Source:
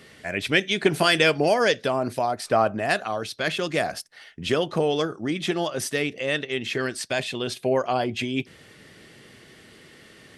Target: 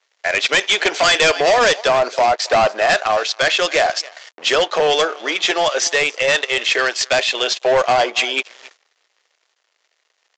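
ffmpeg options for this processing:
-filter_complex "[0:a]highshelf=f=2.7k:g=2.5,aecho=1:1:272:0.0944,asplit=2[a][b];[b]alimiter=limit=-13dB:level=0:latency=1:release=149,volume=-1.5dB[c];[a][c]amix=inputs=2:normalize=0,aeval=exprs='sgn(val(0))*max(abs(val(0))-0.0106,0)':c=same,agate=range=-15dB:threshold=-52dB:ratio=16:detection=peak,highpass=f=500:w=0.5412,highpass=f=500:w=1.3066,aresample=16000,volume=19dB,asoftclip=hard,volume=-19dB,aresample=44100,volume=8.5dB"

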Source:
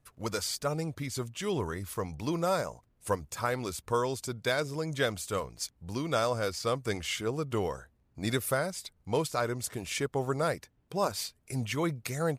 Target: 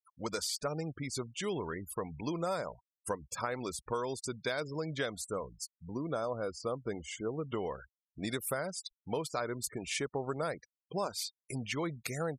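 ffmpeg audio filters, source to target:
-filter_complex "[0:a]asettb=1/sr,asplit=3[a][b][c];[a]atrim=end=5.244[d];[b]atrim=start=5.24:end=7.45,asetpts=PTS-STARTPTS,afade=t=in:d=0.004:c=qsin,afade=t=out:st=2.206:d=0.004:c=qsin,equalizer=f=3.1k:w=0.61:g=-11[e];[c]atrim=start=7.446[f];[d][e]acrossfade=d=0.004:c1=hsin:c2=qsin[g];[g][f]acrossfade=d=0.004:c1=qsin:c2=hsin,afftfilt=real='re*gte(hypot(re,im),0.00891)':imag='im*gte(hypot(re,im),0.00891)':win_size=1024:overlap=0.75,acompressor=threshold=-31dB:ratio=4,equalizer=f=94:w=1.6:g=-9"

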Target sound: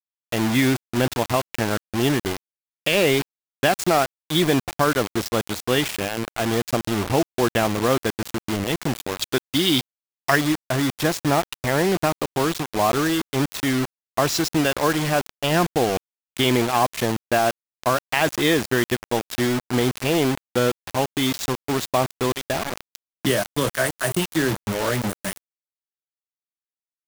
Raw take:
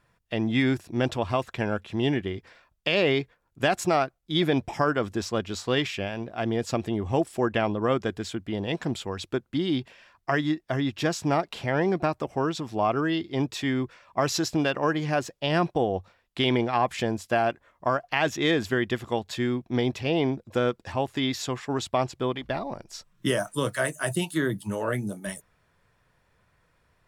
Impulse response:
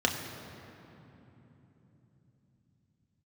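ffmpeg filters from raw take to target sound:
-filter_complex "[0:a]asettb=1/sr,asplit=3[a][b][c];[a]atrim=end=9.224[d];[b]atrim=start=9.22:end=10.36,asetpts=PTS-STARTPTS,afade=t=in:d=0.004:c=qsin,afade=t=out:st=1.136:d=0.004:c=qsin,equalizer=f=5.7k:w=0.4:g=14[e];[c]atrim=start=10.356[f];[d][e]acrossfade=d=0.004:c1=hsin:c2=qsin[g];[g][f]acrossfade=d=0.004:c1=qsin:c2=hsin,acrusher=bits=4:mix=0:aa=0.000001,volume=4dB"

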